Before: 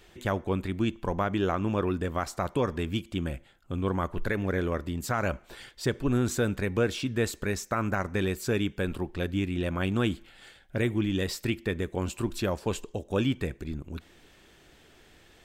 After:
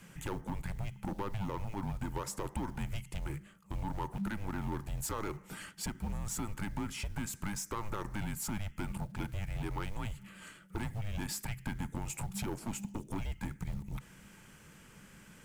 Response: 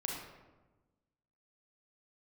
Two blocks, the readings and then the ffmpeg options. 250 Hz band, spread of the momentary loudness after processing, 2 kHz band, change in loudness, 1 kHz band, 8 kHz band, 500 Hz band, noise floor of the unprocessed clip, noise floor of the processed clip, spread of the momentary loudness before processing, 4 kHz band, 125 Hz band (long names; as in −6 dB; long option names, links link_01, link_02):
−10.5 dB, 9 LU, −11.0 dB, −9.5 dB, −7.5 dB, −1.0 dB, −16.0 dB, −58 dBFS, −58 dBFS, 7 LU, −9.5 dB, −7.5 dB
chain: -af "equalizer=frequency=100:width_type=o:width=0.67:gain=-11,equalizer=frequency=1000:width_type=o:width=0.67:gain=-9,equalizer=frequency=4000:width_type=o:width=0.67:gain=-10,equalizer=frequency=10000:width_type=o:width=0.67:gain=6,acompressor=threshold=-32dB:ratio=8,asoftclip=type=tanh:threshold=-34dB,acrusher=bits=7:mode=log:mix=0:aa=0.000001,afreqshift=-210,equalizer=frequency=880:width_type=o:width=0.25:gain=11.5,volume=2.5dB"